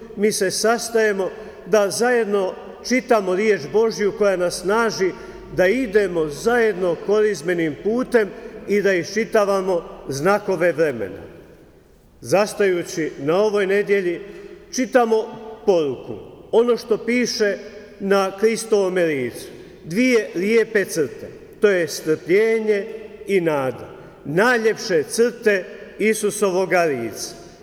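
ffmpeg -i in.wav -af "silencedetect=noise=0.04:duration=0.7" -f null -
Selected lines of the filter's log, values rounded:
silence_start: 11.25
silence_end: 12.25 | silence_duration: 1.00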